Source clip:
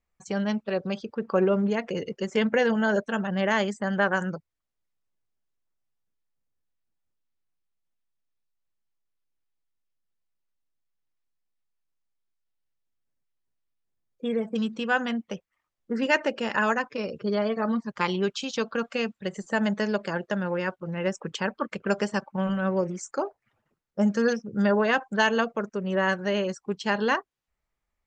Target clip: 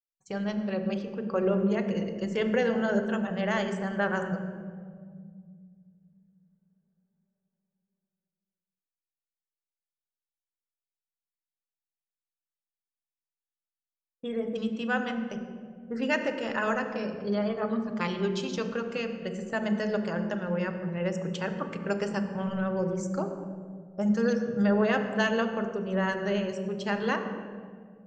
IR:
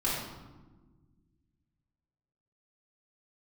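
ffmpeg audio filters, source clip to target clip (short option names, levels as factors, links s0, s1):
-filter_complex "[0:a]agate=range=0.0224:threshold=0.01:ratio=3:detection=peak,asplit=2[s0][s1];[1:a]atrim=start_sample=2205,asetrate=24255,aresample=44100,lowshelf=f=390:g=10[s2];[s1][s2]afir=irnorm=-1:irlink=0,volume=0.119[s3];[s0][s3]amix=inputs=2:normalize=0,volume=0.473"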